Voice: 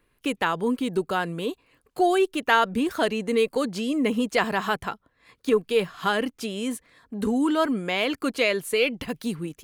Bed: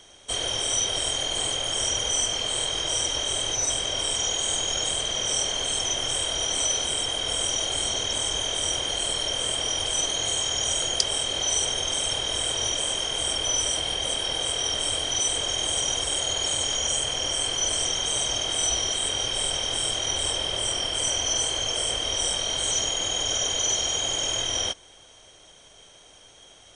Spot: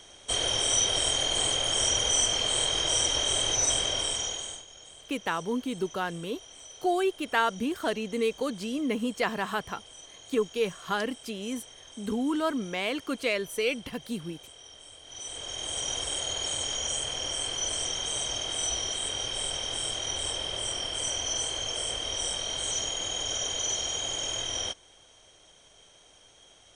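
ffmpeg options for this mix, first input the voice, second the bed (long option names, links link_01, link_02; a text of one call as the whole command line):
ffmpeg -i stem1.wav -i stem2.wav -filter_complex "[0:a]adelay=4850,volume=-5.5dB[link_01];[1:a]volume=17.5dB,afade=type=out:start_time=3.79:duration=0.86:silence=0.0707946,afade=type=in:start_time=15.03:duration=0.92:silence=0.133352[link_02];[link_01][link_02]amix=inputs=2:normalize=0" out.wav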